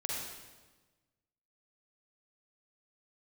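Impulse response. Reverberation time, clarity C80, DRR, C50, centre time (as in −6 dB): 1.3 s, 1.5 dB, −3.5 dB, −2.0 dB, 86 ms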